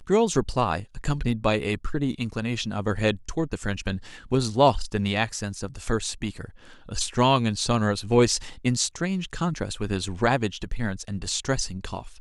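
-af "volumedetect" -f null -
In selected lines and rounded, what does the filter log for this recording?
mean_volume: -25.5 dB
max_volume: -6.6 dB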